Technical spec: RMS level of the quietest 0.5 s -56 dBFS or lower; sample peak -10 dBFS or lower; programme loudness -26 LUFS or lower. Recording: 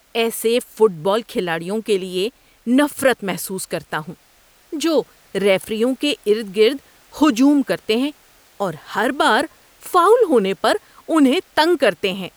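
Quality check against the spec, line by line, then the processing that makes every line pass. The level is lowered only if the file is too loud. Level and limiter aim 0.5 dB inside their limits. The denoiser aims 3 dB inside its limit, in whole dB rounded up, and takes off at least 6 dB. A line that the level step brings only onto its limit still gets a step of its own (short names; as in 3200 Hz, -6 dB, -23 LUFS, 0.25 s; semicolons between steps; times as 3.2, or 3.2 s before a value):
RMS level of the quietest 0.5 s -53 dBFS: fail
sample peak -4.0 dBFS: fail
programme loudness -18.5 LUFS: fail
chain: gain -8 dB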